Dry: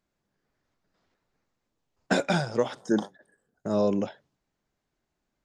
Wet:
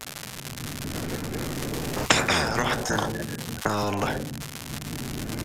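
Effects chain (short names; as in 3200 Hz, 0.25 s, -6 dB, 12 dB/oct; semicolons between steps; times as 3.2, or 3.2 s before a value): octaver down 1 oct, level +3 dB; recorder AGC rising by 15 dB/s; graphic EQ 125/250/1000/4000/8000 Hz +12/+11/-5/-10/-6 dB; gate -58 dBFS, range -6 dB; reverb RT60 0.45 s, pre-delay 3 ms, DRR 10 dB; crackle 230/s -41 dBFS; downsampling 32000 Hz; in parallel at -3 dB: compressor, threshold -35 dBFS, peak gain reduction 28.5 dB; on the sum: spectral compressor 10:1; gain -5.5 dB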